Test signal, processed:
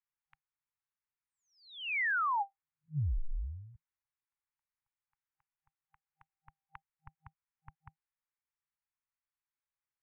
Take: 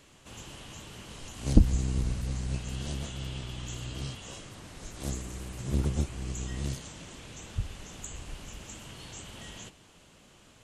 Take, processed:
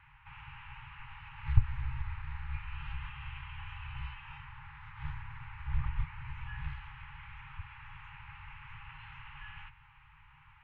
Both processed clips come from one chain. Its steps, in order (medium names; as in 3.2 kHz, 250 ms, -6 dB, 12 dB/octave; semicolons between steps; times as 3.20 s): mistuned SSB -200 Hz 160–2600 Hz; FFT band-reject 160–790 Hz; trim +3 dB